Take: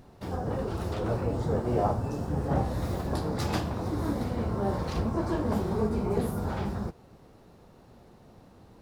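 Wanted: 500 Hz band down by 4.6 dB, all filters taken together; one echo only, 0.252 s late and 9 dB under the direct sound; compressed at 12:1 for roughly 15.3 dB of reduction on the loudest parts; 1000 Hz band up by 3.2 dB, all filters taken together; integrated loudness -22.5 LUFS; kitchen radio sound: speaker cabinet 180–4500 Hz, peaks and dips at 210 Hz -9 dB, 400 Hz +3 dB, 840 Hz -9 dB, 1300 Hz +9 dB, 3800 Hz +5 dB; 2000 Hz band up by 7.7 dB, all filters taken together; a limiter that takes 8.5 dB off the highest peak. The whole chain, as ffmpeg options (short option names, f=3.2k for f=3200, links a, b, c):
-af "equalizer=f=500:t=o:g=-8.5,equalizer=f=1k:t=o:g=6.5,equalizer=f=2k:t=o:g=5,acompressor=threshold=-39dB:ratio=12,alimiter=level_in=13.5dB:limit=-24dB:level=0:latency=1,volume=-13.5dB,highpass=180,equalizer=f=210:t=q:w=4:g=-9,equalizer=f=400:t=q:w=4:g=3,equalizer=f=840:t=q:w=4:g=-9,equalizer=f=1.3k:t=q:w=4:g=9,equalizer=f=3.8k:t=q:w=4:g=5,lowpass=f=4.5k:w=0.5412,lowpass=f=4.5k:w=1.3066,aecho=1:1:252:0.355,volume=26.5dB"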